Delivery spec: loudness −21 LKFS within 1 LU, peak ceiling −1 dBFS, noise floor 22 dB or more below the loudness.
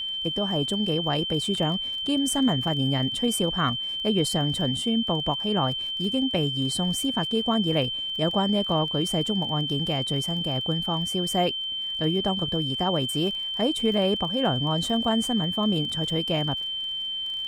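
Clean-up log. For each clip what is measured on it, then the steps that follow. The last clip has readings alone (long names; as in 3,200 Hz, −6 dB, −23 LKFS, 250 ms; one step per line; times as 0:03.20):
crackle rate 27 per second; interfering tone 3,100 Hz; level of the tone −28 dBFS; integrated loudness −25.0 LKFS; sample peak −10.5 dBFS; target loudness −21.0 LKFS
→ click removal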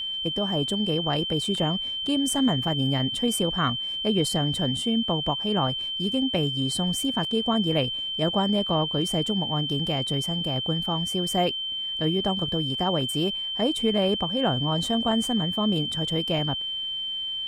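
crackle rate 0 per second; interfering tone 3,100 Hz; level of the tone −28 dBFS
→ notch filter 3,100 Hz, Q 30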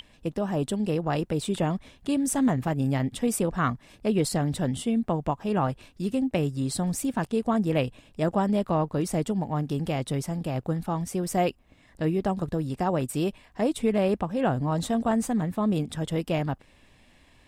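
interfering tone none found; integrated loudness −27.5 LKFS; sample peak −11.5 dBFS; target loudness −21.0 LKFS
→ level +6.5 dB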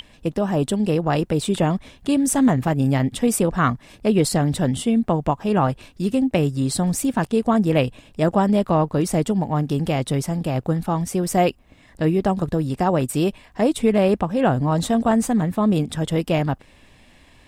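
integrated loudness −21.0 LKFS; sample peak −5.0 dBFS; background noise floor −52 dBFS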